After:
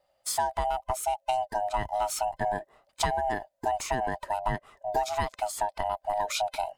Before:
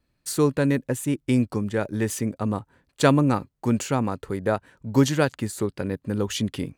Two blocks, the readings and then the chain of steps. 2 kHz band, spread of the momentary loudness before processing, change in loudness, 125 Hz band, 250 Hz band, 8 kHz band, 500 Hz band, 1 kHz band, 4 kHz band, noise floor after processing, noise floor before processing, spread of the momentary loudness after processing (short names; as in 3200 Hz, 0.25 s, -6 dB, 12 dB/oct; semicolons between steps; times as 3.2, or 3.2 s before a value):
-4.5 dB, 8 LU, -5.5 dB, -16.5 dB, -21.5 dB, -2.5 dB, -5.5 dB, +5.0 dB, -3.0 dB, -74 dBFS, -74 dBFS, 3 LU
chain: band-swap scrambler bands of 500 Hz; compressor 12:1, threshold -24 dBFS, peak gain reduction 12.5 dB